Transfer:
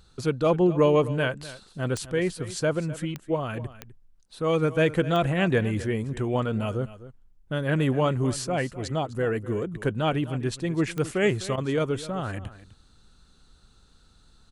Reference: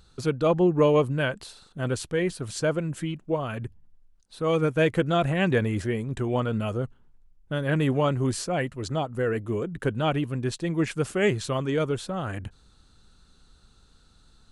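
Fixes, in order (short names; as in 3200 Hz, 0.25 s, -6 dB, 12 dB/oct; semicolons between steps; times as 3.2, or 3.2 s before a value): de-click; interpolate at 11.56, 15 ms; inverse comb 0.253 s -16 dB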